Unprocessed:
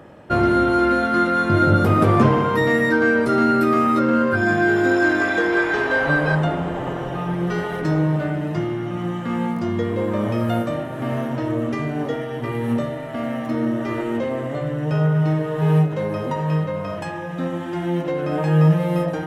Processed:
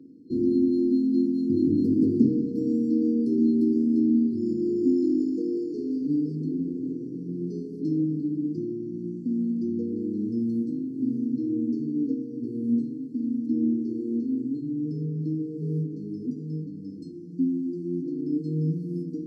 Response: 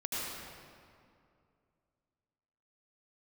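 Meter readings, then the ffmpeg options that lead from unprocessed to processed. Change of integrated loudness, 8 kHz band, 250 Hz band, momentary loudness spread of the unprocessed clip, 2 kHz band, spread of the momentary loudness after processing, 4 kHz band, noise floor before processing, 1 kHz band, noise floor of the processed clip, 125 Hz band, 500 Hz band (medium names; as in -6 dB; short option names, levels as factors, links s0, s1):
-6.0 dB, no reading, -2.0 dB, 10 LU, under -40 dB, 10 LU, under -20 dB, -29 dBFS, under -40 dB, -38 dBFS, -12.5 dB, -11.0 dB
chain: -filter_complex "[0:a]asplit=3[s0][s1][s2];[s0]bandpass=f=270:t=q:w=8,volume=1[s3];[s1]bandpass=f=2290:t=q:w=8,volume=0.501[s4];[s2]bandpass=f=3010:t=q:w=8,volume=0.355[s5];[s3][s4][s5]amix=inputs=3:normalize=0,acontrast=34,afftfilt=real='re*(1-between(b*sr/4096,500,4200))':imag='im*(1-between(b*sr/4096,500,4200))':win_size=4096:overlap=0.75,volume=1.19"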